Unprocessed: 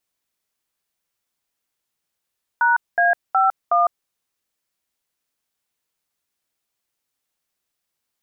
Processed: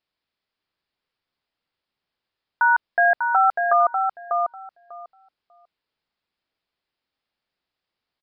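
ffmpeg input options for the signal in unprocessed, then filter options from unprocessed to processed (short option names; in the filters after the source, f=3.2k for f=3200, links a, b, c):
-f lavfi -i "aevalsrc='0.158*clip(min(mod(t,0.368),0.155-mod(t,0.368))/0.002,0,1)*(eq(floor(t/0.368),0)*(sin(2*PI*941*mod(t,0.368))+sin(2*PI*1477*mod(t,0.368)))+eq(floor(t/0.368),1)*(sin(2*PI*697*mod(t,0.368))+sin(2*PI*1633*mod(t,0.368)))+eq(floor(t/0.368),2)*(sin(2*PI*770*mod(t,0.368))+sin(2*PI*1336*mod(t,0.368)))+eq(floor(t/0.368),3)*(sin(2*PI*697*mod(t,0.368))+sin(2*PI*1209*mod(t,0.368))))':d=1.472:s=44100"
-filter_complex "[0:a]asplit=2[a][b];[b]adelay=595,lowpass=f=1.2k:p=1,volume=-3dB,asplit=2[c][d];[d]adelay=595,lowpass=f=1.2k:p=1,volume=0.18,asplit=2[e][f];[f]adelay=595,lowpass=f=1.2k:p=1,volume=0.18[g];[c][e][g]amix=inputs=3:normalize=0[h];[a][h]amix=inputs=2:normalize=0,aresample=11025,aresample=44100"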